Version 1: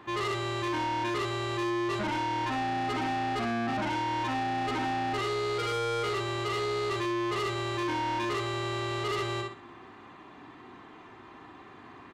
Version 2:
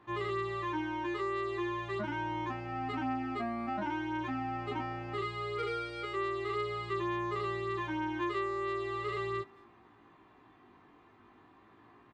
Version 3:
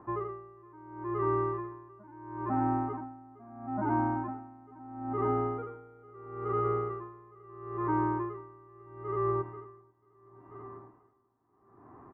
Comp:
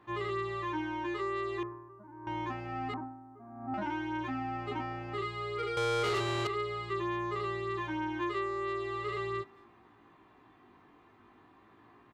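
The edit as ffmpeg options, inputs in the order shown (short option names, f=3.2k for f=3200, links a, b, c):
-filter_complex "[2:a]asplit=2[a][b];[1:a]asplit=4[c][d][e][f];[c]atrim=end=1.632[g];[a]atrim=start=1.628:end=2.272[h];[d]atrim=start=2.268:end=2.942[i];[b]atrim=start=2.938:end=3.742[j];[e]atrim=start=3.738:end=5.772[k];[0:a]atrim=start=5.768:end=6.472[l];[f]atrim=start=6.468[m];[g][h]acrossfade=d=0.004:c1=hsin:c2=hsin[n];[n][i]acrossfade=d=0.004:c1=hsin:c2=hsin[o];[o][j]acrossfade=d=0.004:c1=hsin:c2=hsin[p];[p][k]acrossfade=d=0.004:c1=hsin:c2=hsin[q];[q][l]acrossfade=d=0.004:c1=hsin:c2=hsin[r];[r][m]acrossfade=d=0.004:c1=hsin:c2=hsin"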